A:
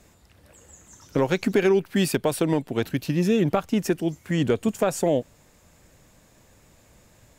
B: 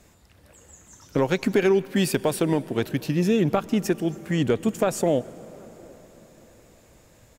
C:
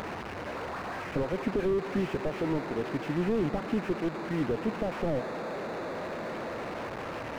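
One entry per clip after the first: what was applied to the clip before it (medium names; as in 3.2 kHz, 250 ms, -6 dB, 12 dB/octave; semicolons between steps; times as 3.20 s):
echo from a far wall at 130 m, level -28 dB; on a send at -19 dB: reverberation RT60 5.0 s, pre-delay 88 ms
one-bit delta coder 16 kbps, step -24 dBFS; high-pass 390 Hz 6 dB/octave; slew-rate limiter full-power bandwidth 22 Hz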